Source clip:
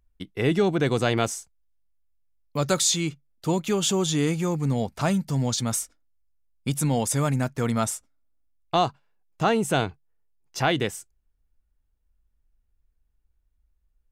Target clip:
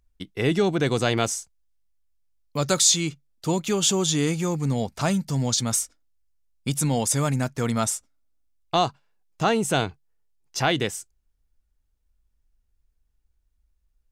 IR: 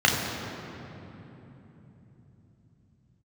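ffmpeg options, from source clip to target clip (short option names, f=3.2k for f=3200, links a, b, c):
-af "equalizer=f=5.9k:t=o:w=1.6:g=5"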